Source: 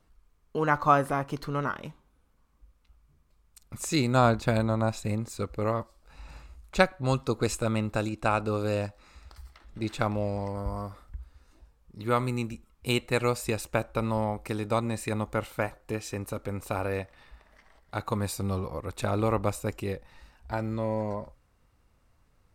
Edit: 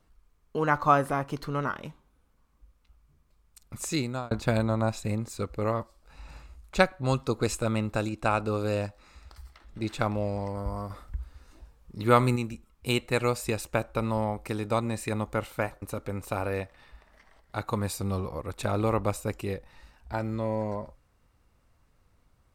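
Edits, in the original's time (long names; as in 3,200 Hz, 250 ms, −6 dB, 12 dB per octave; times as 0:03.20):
0:03.84–0:04.31: fade out
0:10.90–0:12.36: clip gain +5.5 dB
0:15.82–0:16.21: remove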